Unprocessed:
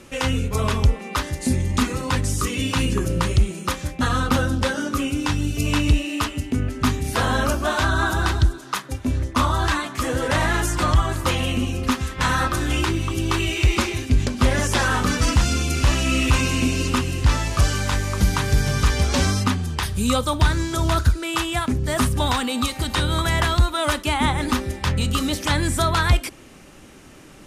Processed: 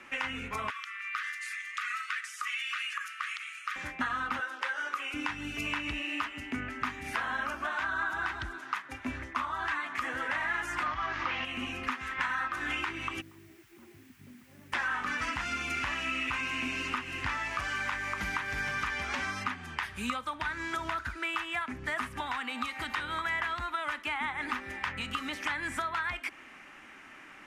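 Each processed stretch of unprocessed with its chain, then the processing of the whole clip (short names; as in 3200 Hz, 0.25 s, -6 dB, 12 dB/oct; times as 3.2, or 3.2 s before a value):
0.7–3.76 brick-wall FIR high-pass 1100 Hz + compressor, threshold -28 dBFS
4.4–5.14 HPF 450 Hz 24 dB/oct + notch 690 Hz, Q 5.6
10.86–11.45 delta modulation 32 kbps, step -29.5 dBFS + fast leveller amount 50%
13.2–14.72 negative-ratio compressor -23 dBFS + ladder band-pass 160 Hz, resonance 25% + added noise blue -50 dBFS
whole clip: three-band isolator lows -22 dB, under 490 Hz, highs -17 dB, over 4500 Hz; compressor, threshold -31 dBFS; graphic EQ 250/500/2000/4000 Hz +8/-11/+7/-9 dB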